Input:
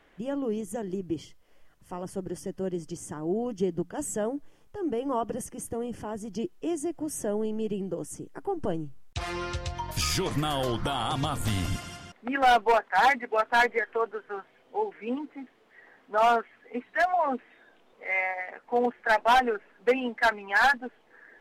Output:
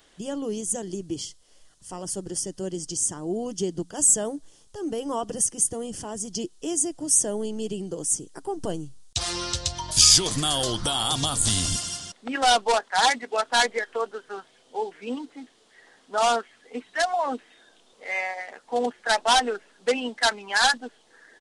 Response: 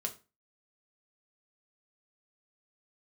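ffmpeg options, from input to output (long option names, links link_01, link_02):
-af "aresample=22050,aresample=44100,aexciter=amount=6.1:drive=5.1:freq=3300"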